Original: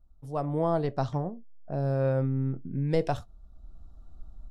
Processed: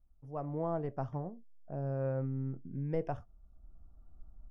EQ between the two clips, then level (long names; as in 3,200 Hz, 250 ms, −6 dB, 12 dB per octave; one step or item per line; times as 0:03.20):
moving average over 11 samples
−8.0 dB